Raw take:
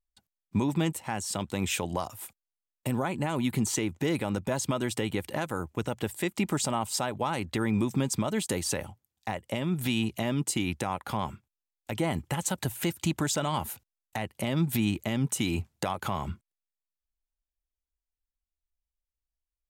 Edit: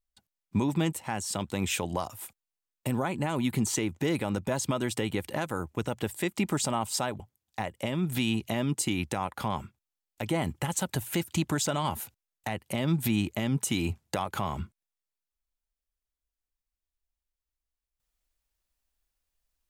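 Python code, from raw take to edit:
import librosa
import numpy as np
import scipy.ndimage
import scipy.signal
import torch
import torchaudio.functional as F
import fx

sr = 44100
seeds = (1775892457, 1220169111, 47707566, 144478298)

y = fx.edit(x, sr, fx.cut(start_s=7.2, length_s=1.69), tone=tone)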